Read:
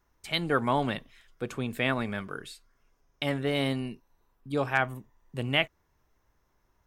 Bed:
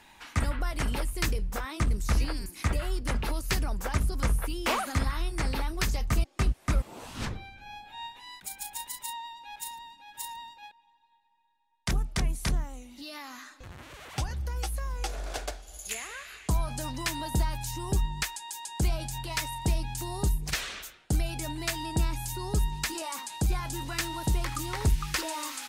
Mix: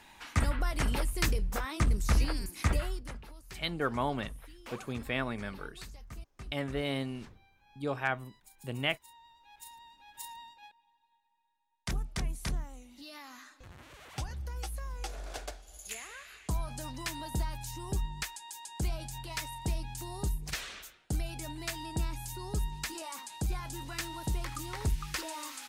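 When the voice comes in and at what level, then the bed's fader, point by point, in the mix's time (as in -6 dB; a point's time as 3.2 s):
3.30 s, -5.5 dB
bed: 2.79 s -0.5 dB
3.27 s -19.5 dB
9.11 s -19.5 dB
10.01 s -6 dB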